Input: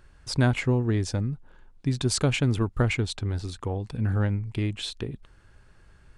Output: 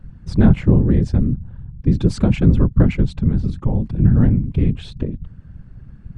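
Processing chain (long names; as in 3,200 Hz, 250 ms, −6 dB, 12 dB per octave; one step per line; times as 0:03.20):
RIAA equalisation playback
random phases in short frames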